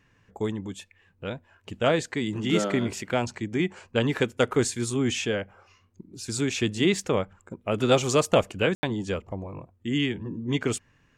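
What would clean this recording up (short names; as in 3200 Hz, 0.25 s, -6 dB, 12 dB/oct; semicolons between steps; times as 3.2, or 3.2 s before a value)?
room tone fill 8.75–8.83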